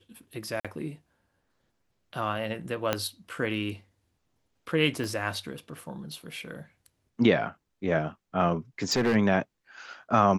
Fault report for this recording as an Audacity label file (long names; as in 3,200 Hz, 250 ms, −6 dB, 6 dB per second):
0.600000	0.650000	drop-out 46 ms
2.930000	2.930000	click −10 dBFS
5.040000	5.040000	click −22 dBFS
8.820000	9.160000	clipping −20.5 dBFS